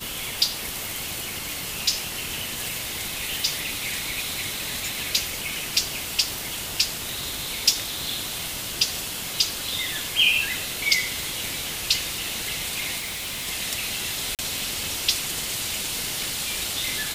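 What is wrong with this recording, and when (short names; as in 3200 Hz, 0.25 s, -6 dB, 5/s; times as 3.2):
12.98–13.48 clipped -28 dBFS
14.35–14.39 gap 38 ms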